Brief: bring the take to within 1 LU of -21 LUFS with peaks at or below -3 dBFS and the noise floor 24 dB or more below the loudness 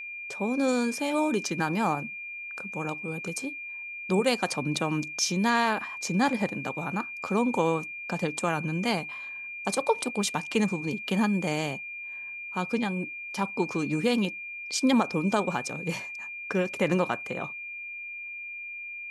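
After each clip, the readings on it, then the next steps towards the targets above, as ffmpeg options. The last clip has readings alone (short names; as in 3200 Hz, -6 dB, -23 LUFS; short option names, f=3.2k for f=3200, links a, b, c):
steady tone 2400 Hz; tone level -36 dBFS; loudness -29.0 LUFS; peak -11.0 dBFS; loudness target -21.0 LUFS
-> -af "bandreject=f=2.4k:w=30"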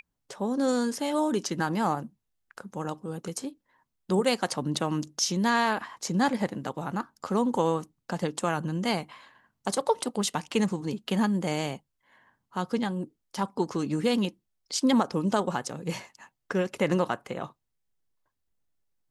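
steady tone none; loudness -29.0 LUFS; peak -11.5 dBFS; loudness target -21.0 LUFS
-> -af "volume=8dB"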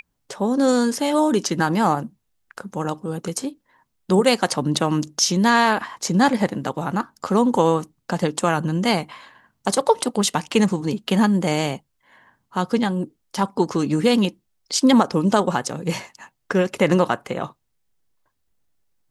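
loudness -21.0 LUFS; peak -3.5 dBFS; noise floor -72 dBFS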